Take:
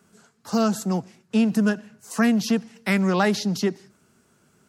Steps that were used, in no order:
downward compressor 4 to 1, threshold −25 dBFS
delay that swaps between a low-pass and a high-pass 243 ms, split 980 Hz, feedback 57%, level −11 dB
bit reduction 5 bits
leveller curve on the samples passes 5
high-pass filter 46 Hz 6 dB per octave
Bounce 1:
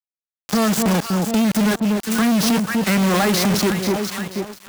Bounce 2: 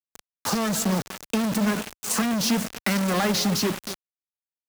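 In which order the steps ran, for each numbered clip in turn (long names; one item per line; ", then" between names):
bit reduction, then delay that swaps between a low-pass and a high-pass, then downward compressor, then leveller curve on the samples, then high-pass filter
leveller curve on the samples, then downward compressor, then delay that swaps between a low-pass and a high-pass, then bit reduction, then high-pass filter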